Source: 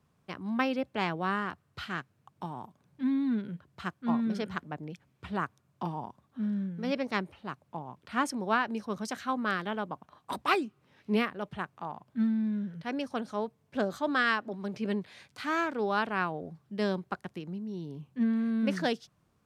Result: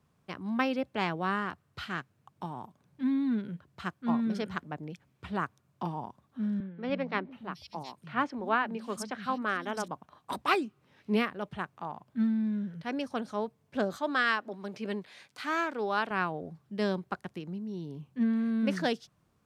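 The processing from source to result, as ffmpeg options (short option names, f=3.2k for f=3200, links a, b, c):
-filter_complex "[0:a]asettb=1/sr,asplit=3[a][b][c];[a]atrim=end=6.604[d];[b]atrim=start=6.6:end=9.88,asetpts=PTS-STARTPTS,afade=t=in:d=0.004:c=qsin,afade=t=out:st=3.276:d=0.004:c=qsin,acrossover=split=190|3900[e][f][g];[e]adelay=290[h];[g]adelay=720[i];[h][f][i]amix=inputs=3:normalize=0,atrim=end_sample=144648[j];[c]atrim=start=9.876[k];[d][j]acrossfade=d=0.004:c1=hsin:c2=qsin[l];[l][k]acrossfade=d=0.004:c1=qsin:c2=hsin,asettb=1/sr,asplit=3[m][n][o];[m]atrim=end=13.964[p];[n]atrim=start=13.96:end=16.11,asetpts=PTS-STARTPTS,afade=t=in:d=0.004:c=qsin,afade=t=out:st=2.146:d=0.004:c=qsin,highpass=f=300:p=1[q];[o]atrim=start=16.106[r];[p][q]acrossfade=d=0.004:c1=hsin:c2=qsin[s];[s][r]acrossfade=d=0.004:c1=qsin:c2=hsin"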